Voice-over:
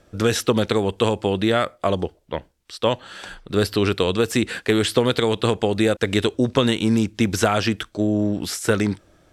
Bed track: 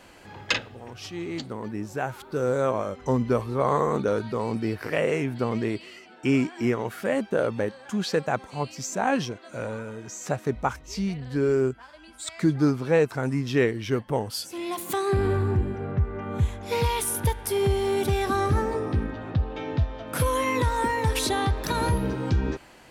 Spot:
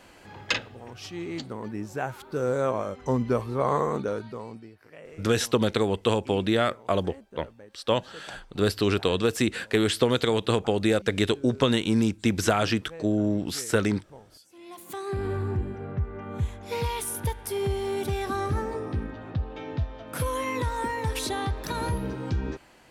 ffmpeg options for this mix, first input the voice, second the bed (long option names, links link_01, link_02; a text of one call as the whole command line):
ffmpeg -i stem1.wav -i stem2.wav -filter_complex "[0:a]adelay=5050,volume=-4dB[link_01];[1:a]volume=16dB,afade=type=out:start_time=3.77:duration=0.93:silence=0.0944061,afade=type=in:start_time=14.42:duration=1.04:silence=0.133352[link_02];[link_01][link_02]amix=inputs=2:normalize=0" out.wav